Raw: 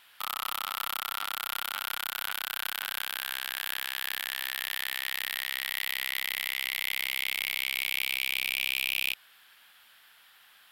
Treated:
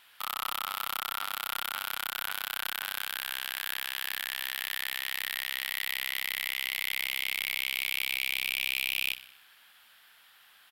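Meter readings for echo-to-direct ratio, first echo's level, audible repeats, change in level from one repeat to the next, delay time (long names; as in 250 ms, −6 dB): −13.5 dB, −15.0 dB, 4, −5.0 dB, 62 ms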